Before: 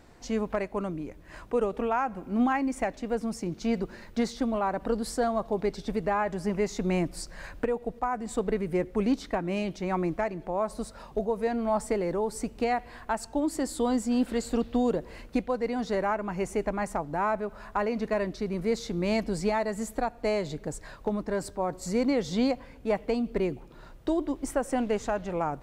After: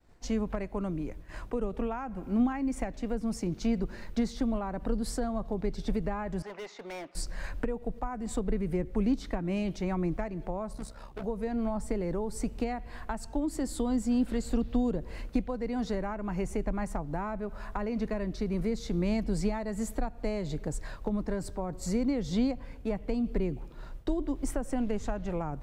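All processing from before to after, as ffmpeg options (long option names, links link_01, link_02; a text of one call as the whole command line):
ffmpeg -i in.wav -filter_complex "[0:a]asettb=1/sr,asplit=3[link_01][link_02][link_03];[link_01]atrim=end=6.424[link_04];[link_02]atrim=start=6.42:end=7.15,asetpts=PTS-STARTPTS,afade=type=in:duration=0.004:curve=qsin,afade=type=out:start_time=0.726:duration=0.004:curve=qsin,highpass=690,lowpass=2900,asoftclip=type=hard:threshold=-37dB[link_05];[link_03]atrim=start=7.146[link_06];[link_04][link_05]acrossfade=duration=0.004:curve1=hsin:curve2=qsin[link_07];[link_07][link_06]acrossfade=duration=0.004:curve1=qsin:curve2=hsin,asettb=1/sr,asplit=3[link_08][link_09][link_10];[link_08]atrim=end=10.734[link_11];[link_09]atrim=start=10.73:end=11.24,asetpts=PTS-STARTPTS,afade=type=in:duration=0.004:curve=qsin,afade=type=out:start_time=0.506:duration=0.004:curve=qsin,asoftclip=type=hard:threshold=-33.5dB,tremolo=f=65:d=0.667[link_12];[link_10]atrim=start=11.236[link_13];[link_11][link_12]acrossfade=duration=0.004:curve1=hsin:curve2=qsin[link_14];[link_14][link_13]acrossfade=duration=0.004:curve1=qsin:curve2=hsin,agate=range=-33dB:threshold=-46dB:ratio=3:detection=peak,lowshelf=frequency=76:gain=11,acrossover=split=270[link_15][link_16];[link_16]acompressor=threshold=-34dB:ratio=6[link_17];[link_15][link_17]amix=inputs=2:normalize=0" out.wav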